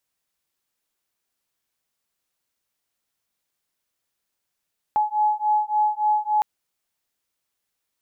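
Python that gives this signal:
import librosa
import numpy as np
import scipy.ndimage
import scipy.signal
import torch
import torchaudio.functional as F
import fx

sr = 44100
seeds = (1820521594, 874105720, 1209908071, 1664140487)

y = fx.two_tone_beats(sr, length_s=1.46, hz=846.0, beat_hz=3.5, level_db=-21.5)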